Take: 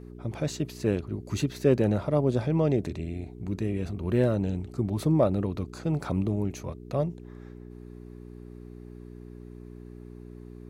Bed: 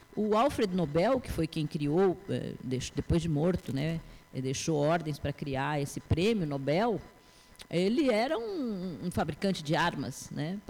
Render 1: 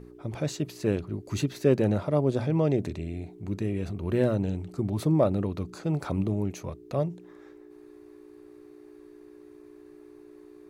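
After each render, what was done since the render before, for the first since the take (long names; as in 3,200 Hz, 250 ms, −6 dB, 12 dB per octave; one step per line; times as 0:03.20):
hum removal 60 Hz, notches 4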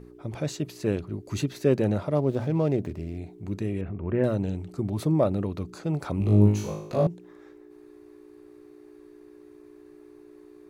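0:02.15–0:03.18: running median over 15 samples
0:03.81–0:04.24: inverse Chebyshev low-pass filter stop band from 4,700 Hz
0:06.18–0:07.07: flutter between parallel walls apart 3.3 metres, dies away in 0.64 s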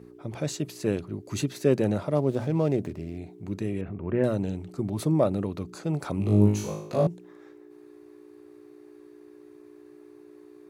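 high-pass filter 100 Hz
dynamic equaliser 9,100 Hz, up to +5 dB, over −57 dBFS, Q 0.85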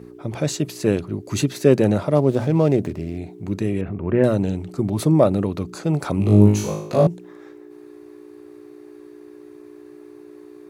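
level +7.5 dB
brickwall limiter −2 dBFS, peak gain reduction 1 dB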